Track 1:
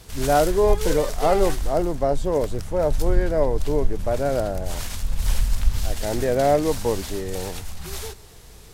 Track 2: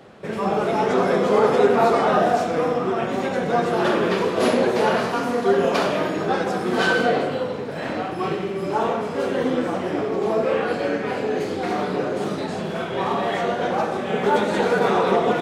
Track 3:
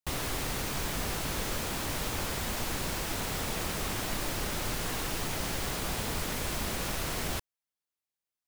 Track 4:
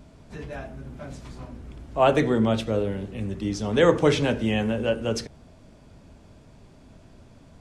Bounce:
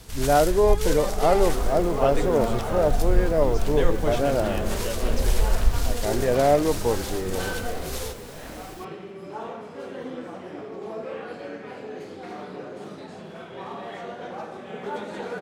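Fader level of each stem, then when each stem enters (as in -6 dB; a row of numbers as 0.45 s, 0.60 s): -0.5 dB, -13.0 dB, -12.5 dB, -8.5 dB; 0.00 s, 0.60 s, 1.45 s, 0.00 s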